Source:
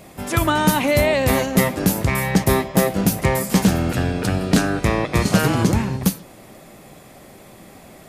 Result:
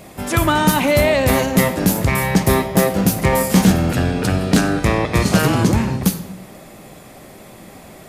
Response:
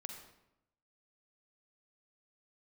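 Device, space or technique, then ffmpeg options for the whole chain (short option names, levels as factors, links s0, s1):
saturated reverb return: -filter_complex "[0:a]asplit=2[s0][s1];[1:a]atrim=start_sample=2205[s2];[s1][s2]afir=irnorm=-1:irlink=0,asoftclip=type=tanh:threshold=0.119,volume=1.12[s3];[s0][s3]amix=inputs=2:normalize=0,asettb=1/sr,asplit=3[s4][s5][s6];[s4]atrim=end=3.304[s7];[s5]atrim=start=3.3:end=3.72,asetpts=PTS-STARTPTS,afade=t=in:d=0.004:c=qsin,afade=t=out:st=0.416:d=0.004:c=qsin,asplit=2[s8][s9];[s9]adelay=27,volume=0.562[s10];[s8][s10]amix=inputs=2:normalize=0,atrim=end_sample=18522[s11];[s6]atrim=start=3.716[s12];[s7][s11]acrossfade=d=0.004:c1=hsin:c2=qsin[s13];[s13][s12]acrossfade=d=0.004:c1=qsin:c2=hsin,volume=0.891"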